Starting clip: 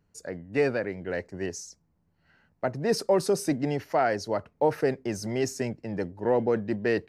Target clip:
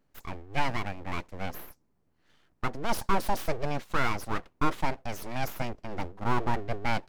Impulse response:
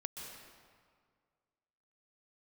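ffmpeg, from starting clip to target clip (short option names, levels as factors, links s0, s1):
-filter_complex "[0:a]asettb=1/sr,asplit=3[s0][s1][s2];[s0]atrim=end=5.004[s3];[s1]atrim=start=5:end=5.53,asetpts=PTS-STARTPTS,afade=t=in:d=0.004:c=qsin,afade=t=out:st=0.526:d=0.004:c=qsin,highpass=f=190:p=1[s4];[s2]atrim=start=5.526[s5];[s3][s4]acrossfade=d=0.004:c1=hsin:c2=qsin[s6];[s6][s5]acrossfade=d=0.004:c1=qsin:c2=hsin,aeval=exprs='abs(val(0))':c=same"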